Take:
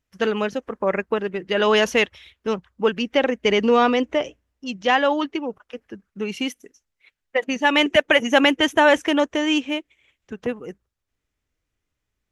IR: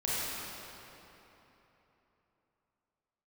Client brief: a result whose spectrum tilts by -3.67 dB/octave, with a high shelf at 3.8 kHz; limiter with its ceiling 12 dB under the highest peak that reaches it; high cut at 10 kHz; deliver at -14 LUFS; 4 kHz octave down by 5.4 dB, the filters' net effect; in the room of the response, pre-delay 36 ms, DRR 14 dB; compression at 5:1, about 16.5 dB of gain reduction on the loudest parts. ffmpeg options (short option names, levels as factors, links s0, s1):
-filter_complex "[0:a]lowpass=10000,highshelf=f=3800:g=-3,equalizer=f=4000:t=o:g=-7,acompressor=threshold=0.0282:ratio=5,alimiter=level_in=2:limit=0.0631:level=0:latency=1,volume=0.501,asplit=2[s0][s1];[1:a]atrim=start_sample=2205,adelay=36[s2];[s1][s2]afir=irnorm=-1:irlink=0,volume=0.075[s3];[s0][s3]amix=inputs=2:normalize=0,volume=20"